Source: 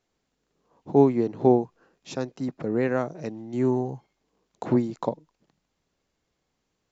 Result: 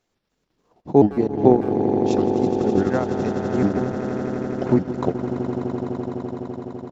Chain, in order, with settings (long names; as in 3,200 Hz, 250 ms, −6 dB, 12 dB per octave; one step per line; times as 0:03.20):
pitch shifter gated in a rhythm −4.5 semitones, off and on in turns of 145 ms
on a send: echo that builds up and dies away 84 ms, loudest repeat 8, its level −11 dB
on the sum: transient designer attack +3 dB, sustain −11 dB
far-end echo of a speakerphone 160 ms, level −15 dB
level +2.5 dB